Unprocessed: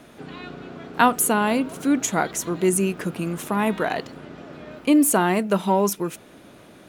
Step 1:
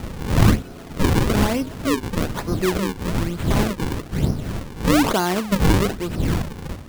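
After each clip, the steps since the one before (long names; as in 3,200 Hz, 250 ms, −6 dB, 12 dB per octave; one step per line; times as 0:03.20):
wind on the microphone 190 Hz −22 dBFS
sample-and-hold swept by an LFO 39×, swing 160% 1.1 Hz
level −1 dB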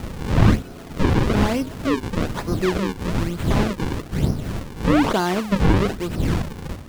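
slew-rate limiting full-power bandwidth 340 Hz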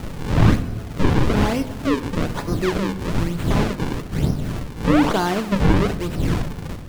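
rectangular room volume 440 cubic metres, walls mixed, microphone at 0.37 metres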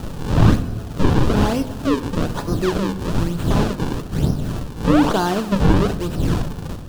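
parametric band 2,100 Hz −8.5 dB 0.4 octaves
level +1.5 dB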